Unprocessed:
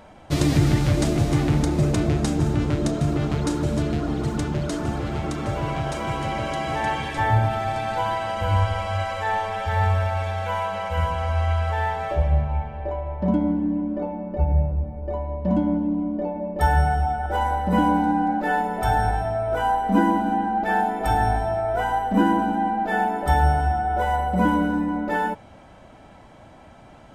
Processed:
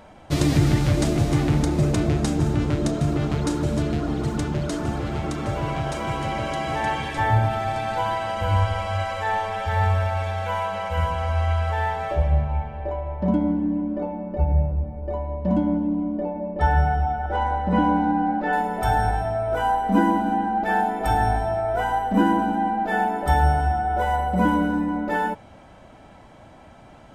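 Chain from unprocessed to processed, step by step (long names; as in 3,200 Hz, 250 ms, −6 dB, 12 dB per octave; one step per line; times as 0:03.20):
0:16.21–0:18.53: high-frequency loss of the air 140 metres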